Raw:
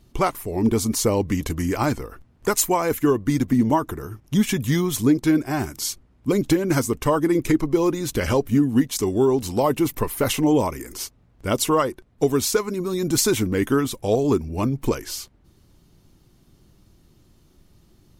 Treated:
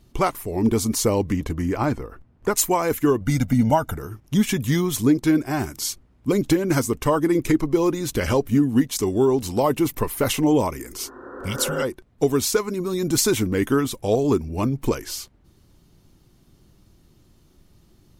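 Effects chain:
0:01.32–0:02.56: high-shelf EQ 3,200 Hz −11.5 dB
0:03.21–0:03.98: comb filter 1.4 ms, depth 87%
0:11.01–0:11.80: healed spectral selection 220–1,900 Hz both

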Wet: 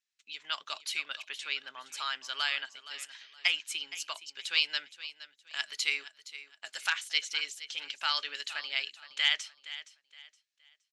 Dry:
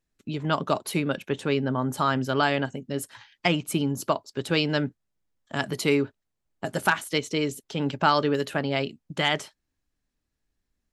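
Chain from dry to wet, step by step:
flat-topped band-pass 4,000 Hz, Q 0.79
repeating echo 468 ms, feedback 29%, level −15 dB
level +1.5 dB

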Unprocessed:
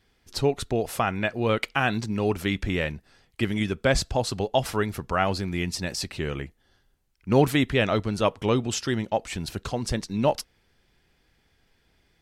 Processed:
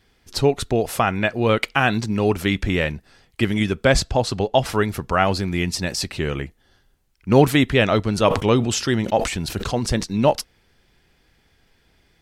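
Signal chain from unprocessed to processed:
0:04.00–0:04.70: high-shelf EQ 9,300 Hz −10.5 dB
0:08.03–0:10.03: level that may fall only so fast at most 89 dB per second
level +5.5 dB

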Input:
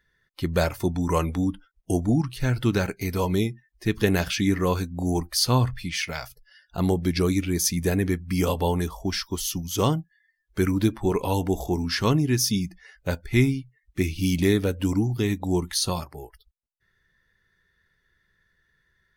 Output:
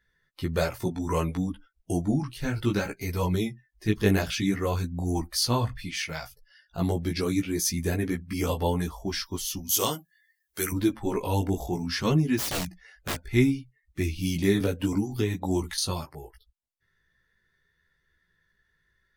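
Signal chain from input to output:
0:09.69–0:10.72: RIAA equalisation recording
0:12.37–0:13.33: wrap-around overflow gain 21.5 dB
multi-voice chorus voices 2, 0.61 Hz, delay 16 ms, depth 4.2 ms
0:14.60–0:15.78: multiband upward and downward compressor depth 100%

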